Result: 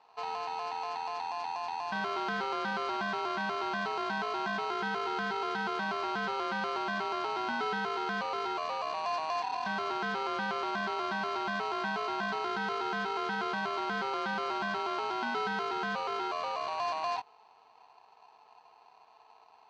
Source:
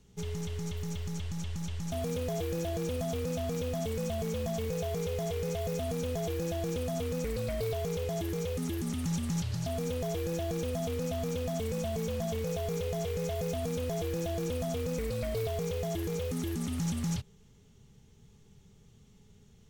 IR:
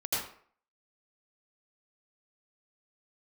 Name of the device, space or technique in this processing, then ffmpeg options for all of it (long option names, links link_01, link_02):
ring modulator pedal into a guitar cabinet: -af "aeval=exprs='val(0)*sgn(sin(2*PI*870*n/s))':channel_layout=same,highpass=110,equalizer=frequency=610:width_type=q:width=4:gain=-3,equalizer=frequency=1600:width_type=q:width=4:gain=4,equalizer=frequency=2600:width_type=q:width=4:gain=-8,lowpass=frequency=4100:width=0.5412,lowpass=frequency=4100:width=1.3066"